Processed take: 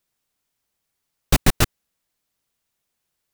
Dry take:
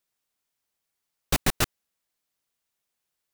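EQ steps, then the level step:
low-shelf EQ 260 Hz +6.5 dB
+4.0 dB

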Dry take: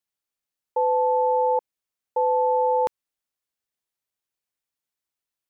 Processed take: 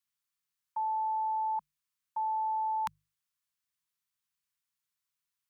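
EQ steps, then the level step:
high-pass filter 60 Hz
elliptic band-stop filter 190–1,000 Hz, stop band 40 dB
mains-hum notches 50/100/150 Hz
0.0 dB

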